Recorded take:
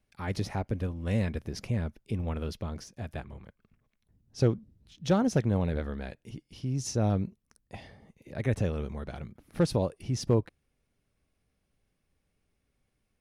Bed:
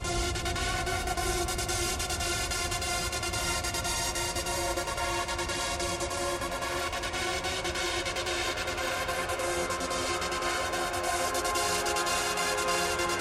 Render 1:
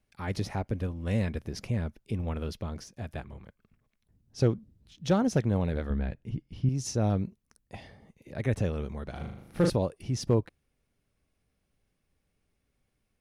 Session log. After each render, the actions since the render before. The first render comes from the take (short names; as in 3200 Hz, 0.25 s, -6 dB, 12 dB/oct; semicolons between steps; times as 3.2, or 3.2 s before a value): 5.9–6.69 tone controls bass +10 dB, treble -12 dB; 9.12–9.7 flutter echo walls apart 6.7 m, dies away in 0.73 s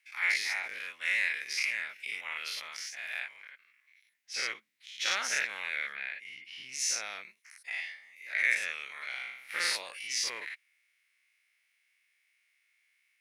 spectral dilation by 0.12 s; resonant high-pass 2100 Hz, resonance Q 5.1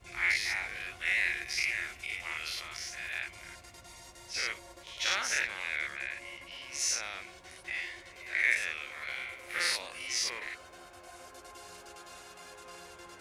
add bed -21 dB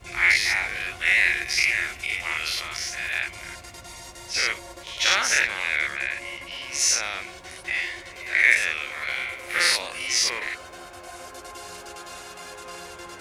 gain +10 dB